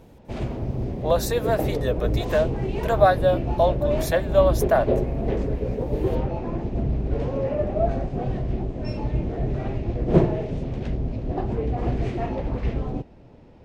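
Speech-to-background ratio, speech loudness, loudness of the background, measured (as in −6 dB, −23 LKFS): 3.0 dB, −23.5 LKFS, −26.5 LKFS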